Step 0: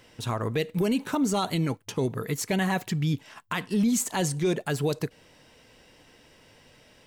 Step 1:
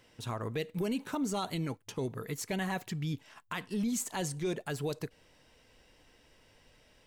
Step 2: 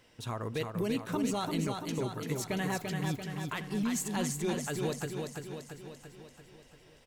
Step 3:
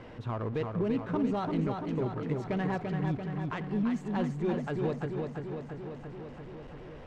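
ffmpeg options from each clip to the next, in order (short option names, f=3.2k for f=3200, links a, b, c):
-af "asubboost=boost=2.5:cutoff=78,volume=-7.5dB"
-af "aecho=1:1:340|680|1020|1360|1700|2040|2380|2720:0.596|0.345|0.2|0.116|0.0674|0.0391|0.0227|0.0132"
-af "aeval=exprs='val(0)+0.5*0.01*sgn(val(0))':c=same,adynamicsmooth=sensitivity=1:basefreq=1.4k,volume=1.5dB"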